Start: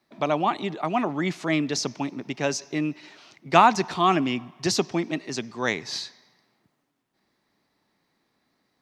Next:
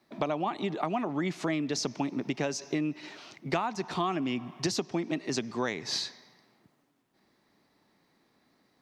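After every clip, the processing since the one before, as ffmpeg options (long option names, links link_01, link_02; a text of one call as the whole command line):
ffmpeg -i in.wav -af "equalizer=frequency=310:width=0.44:gain=3,acompressor=threshold=-28dB:ratio=12,volume=1.5dB" out.wav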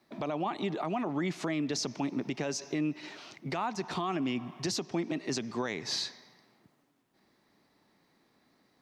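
ffmpeg -i in.wav -af "alimiter=limit=-23dB:level=0:latency=1:release=29" out.wav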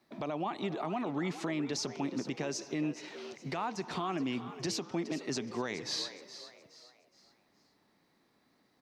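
ffmpeg -i in.wav -filter_complex "[0:a]asplit=5[link_01][link_02][link_03][link_04][link_05];[link_02]adelay=419,afreqshift=81,volume=-13dB[link_06];[link_03]adelay=838,afreqshift=162,volume=-21.4dB[link_07];[link_04]adelay=1257,afreqshift=243,volume=-29.8dB[link_08];[link_05]adelay=1676,afreqshift=324,volume=-38.2dB[link_09];[link_01][link_06][link_07][link_08][link_09]amix=inputs=5:normalize=0,volume=-2.5dB" out.wav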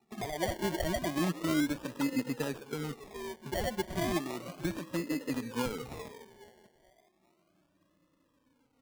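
ffmpeg -i in.wav -af "afftfilt=real='re*pow(10,22/40*sin(2*PI*(1.1*log(max(b,1)*sr/1024/100)/log(2)-(-0.31)*(pts-256)/sr)))':imag='im*pow(10,22/40*sin(2*PI*(1.1*log(max(b,1)*sr/1024/100)/log(2)-(-0.31)*(pts-256)/sr)))':win_size=1024:overlap=0.75,adynamicsmooth=sensitivity=3.5:basefreq=1300,acrusher=samples=27:mix=1:aa=0.000001:lfo=1:lforange=16.2:lforate=0.34,volume=-3dB" out.wav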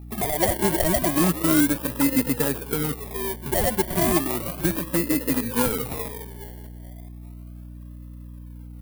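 ffmpeg -i in.wav -filter_complex "[0:a]aexciter=amount=2.9:drive=8.9:freq=9200,aeval=exprs='val(0)+0.00398*(sin(2*PI*60*n/s)+sin(2*PI*2*60*n/s)/2+sin(2*PI*3*60*n/s)/3+sin(2*PI*4*60*n/s)/4+sin(2*PI*5*60*n/s)/5)':channel_layout=same,asplit=2[link_01][link_02];[link_02]aeval=exprs='(mod(10.6*val(0)+1,2)-1)/10.6':channel_layout=same,volume=-3dB[link_03];[link_01][link_03]amix=inputs=2:normalize=0,volume=5.5dB" out.wav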